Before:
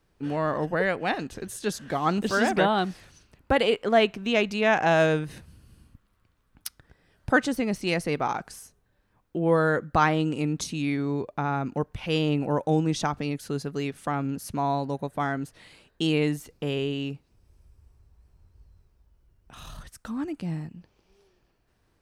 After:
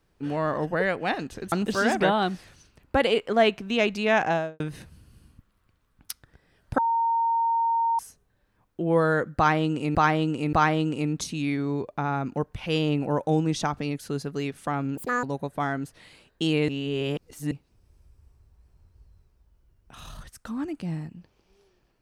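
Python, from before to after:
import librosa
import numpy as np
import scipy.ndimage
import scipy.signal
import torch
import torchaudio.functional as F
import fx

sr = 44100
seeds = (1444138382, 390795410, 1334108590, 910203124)

y = fx.studio_fade_out(x, sr, start_s=4.76, length_s=0.4)
y = fx.edit(y, sr, fx.cut(start_s=1.52, length_s=0.56),
    fx.bleep(start_s=7.34, length_s=1.21, hz=920.0, db=-20.5),
    fx.repeat(start_s=9.93, length_s=0.58, count=3),
    fx.speed_span(start_s=14.37, length_s=0.46, speed=1.75),
    fx.reverse_span(start_s=16.28, length_s=0.83), tone=tone)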